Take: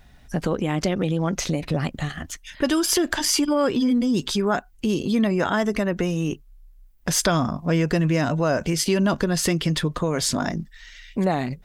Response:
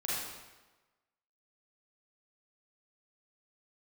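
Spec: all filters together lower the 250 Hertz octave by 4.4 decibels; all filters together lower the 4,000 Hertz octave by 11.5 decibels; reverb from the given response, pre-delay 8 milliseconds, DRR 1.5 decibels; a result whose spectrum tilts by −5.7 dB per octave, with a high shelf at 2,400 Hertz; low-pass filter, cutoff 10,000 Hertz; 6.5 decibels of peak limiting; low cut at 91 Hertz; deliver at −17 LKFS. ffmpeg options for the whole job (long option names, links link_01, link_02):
-filter_complex "[0:a]highpass=91,lowpass=10000,equalizer=frequency=250:width_type=o:gain=-6,highshelf=frequency=2400:gain=-7,equalizer=frequency=4000:width_type=o:gain=-8.5,alimiter=limit=-18dB:level=0:latency=1,asplit=2[link_01][link_02];[1:a]atrim=start_sample=2205,adelay=8[link_03];[link_02][link_03]afir=irnorm=-1:irlink=0,volume=-7dB[link_04];[link_01][link_04]amix=inputs=2:normalize=0,volume=9.5dB"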